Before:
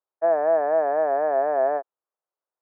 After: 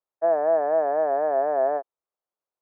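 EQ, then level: high shelf 2100 Hz -9 dB; 0.0 dB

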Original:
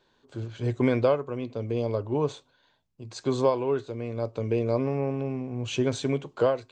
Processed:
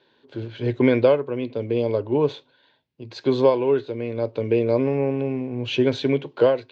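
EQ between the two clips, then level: speaker cabinet 150–4200 Hz, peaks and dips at 190 Hz -8 dB, 720 Hz -6 dB, 1200 Hz -10 dB; +7.5 dB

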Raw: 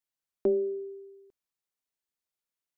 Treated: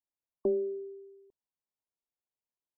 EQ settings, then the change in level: brick-wall FIR low-pass 1100 Hz; -3.0 dB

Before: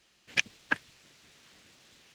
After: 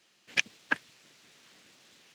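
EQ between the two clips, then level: HPF 150 Hz 12 dB/oct; 0.0 dB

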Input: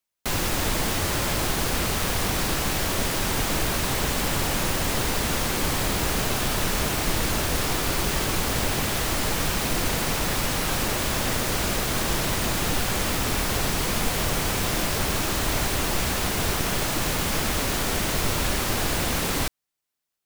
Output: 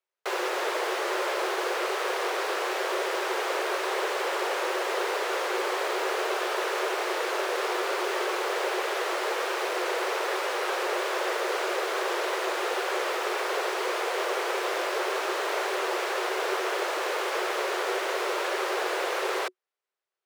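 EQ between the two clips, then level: rippled Chebyshev high-pass 360 Hz, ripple 3 dB; LPF 4000 Hz 6 dB/oct; tilt -2 dB/oct; +2.5 dB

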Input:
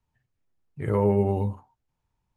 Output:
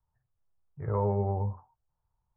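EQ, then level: LPF 1300 Hz 24 dB/oct; bell 270 Hz -14.5 dB 1.4 oct; 0.0 dB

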